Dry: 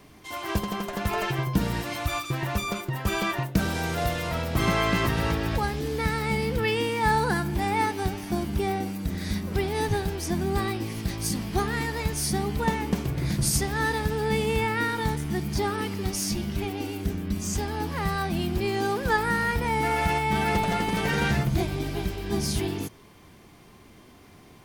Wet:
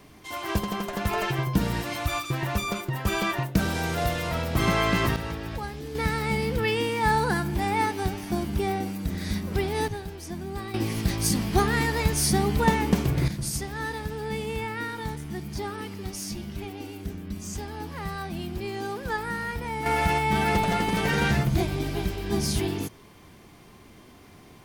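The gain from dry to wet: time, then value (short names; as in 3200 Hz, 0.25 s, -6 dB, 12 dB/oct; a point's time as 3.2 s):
+0.5 dB
from 5.16 s -7 dB
from 5.95 s 0 dB
from 9.88 s -8 dB
from 10.74 s +4 dB
from 13.28 s -6 dB
from 19.86 s +1 dB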